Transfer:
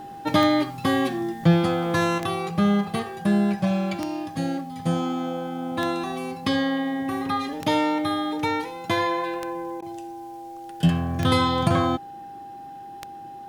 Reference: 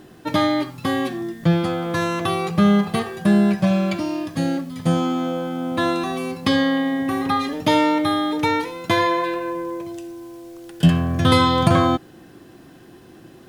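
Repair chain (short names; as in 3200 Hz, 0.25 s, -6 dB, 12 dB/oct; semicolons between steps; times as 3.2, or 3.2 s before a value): de-click; notch 800 Hz, Q 30; interpolate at 9.81, 11 ms; gain 0 dB, from 2.18 s +5 dB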